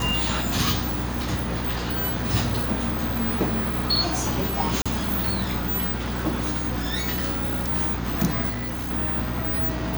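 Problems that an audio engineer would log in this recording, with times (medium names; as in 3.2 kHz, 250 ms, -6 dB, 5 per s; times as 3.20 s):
hum 60 Hz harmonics 5 -30 dBFS
4.82–4.86 s: dropout 36 ms
8.49–8.91 s: clipped -26 dBFS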